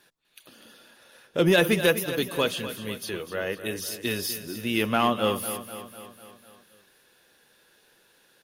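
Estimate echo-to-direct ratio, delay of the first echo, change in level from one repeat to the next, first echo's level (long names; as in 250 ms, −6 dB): −10.5 dB, 249 ms, −5.0 dB, −12.0 dB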